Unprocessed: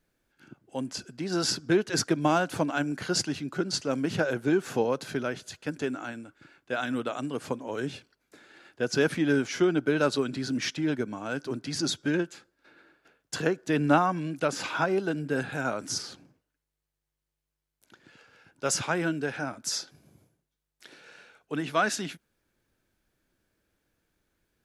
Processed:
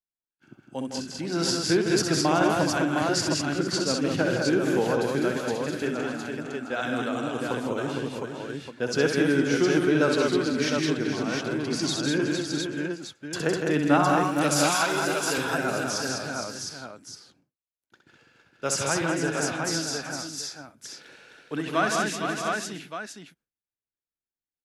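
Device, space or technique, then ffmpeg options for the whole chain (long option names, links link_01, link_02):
ducked delay: -filter_complex "[0:a]asettb=1/sr,asplit=3[link_01][link_02][link_03];[link_01]atrim=end=14.034[link_04];[link_02]atrim=start=14.03:end=15.38,asetpts=PTS-STARTPTS,afade=type=in:duration=0.004:curve=qsin,afade=type=out:start_time=1.346:duration=0.004:curve=qsin,aemphasis=mode=production:type=riaa[link_05];[link_03]atrim=start=15.376[link_06];[link_04][link_05]acrossfade=duration=0.004:curve1=hsin:curve2=qsin[link_07];[link_07][link_06]acrossfade=duration=0.004:curve1=qsin:curve2=hsin,agate=range=-33dB:threshold=-51dB:ratio=3:detection=peak,asplit=3[link_08][link_09][link_10];[link_09]adelay=460,volume=-6.5dB[link_11];[link_10]apad=whole_len=1107128[link_12];[link_11][link_12]sidechaincompress=threshold=-35dB:ratio=8:attack=16:release=135[link_13];[link_08][link_13]amix=inputs=2:normalize=0,aecho=1:1:65|159|202|377|711:0.473|0.473|0.631|0.158|0.631"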